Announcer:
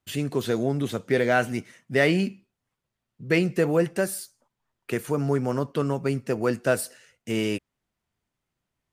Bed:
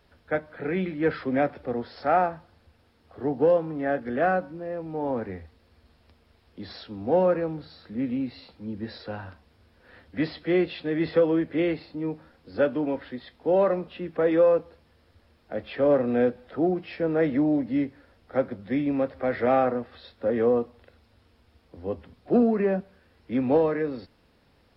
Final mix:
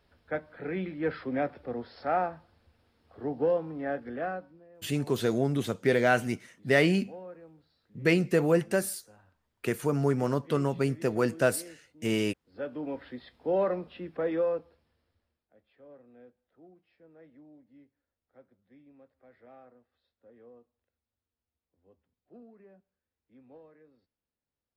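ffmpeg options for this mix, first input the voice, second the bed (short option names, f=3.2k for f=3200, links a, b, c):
-filter_complex "[0:a]adelay=4750,volume=-2dB[a];[1:a]volume=11.5dB,afade=t=out:st=3.89:d=0.79:silence=0.141254,afade=t=in:st=12.44:d=0.63:silence=0.133352,afade=t=out:st=13.92:d=1.57:silence=0.0473151[b];[a][b]amix=inputs=2:normalize=0"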